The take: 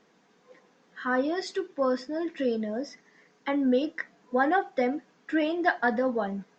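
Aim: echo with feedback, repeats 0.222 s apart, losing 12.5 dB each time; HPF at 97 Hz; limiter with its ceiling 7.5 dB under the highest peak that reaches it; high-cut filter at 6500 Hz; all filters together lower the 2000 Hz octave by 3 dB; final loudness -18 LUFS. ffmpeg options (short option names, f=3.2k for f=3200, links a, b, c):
-af "highpass=97,lowpass=6.5k,equalizer=f=2k:t=o:g=-4,alimiter=limit=-19.5dB:level=0:latency=1,aecho=1:1:222|444|666:0.237|0.0569|0.0137,volume=12.5dB"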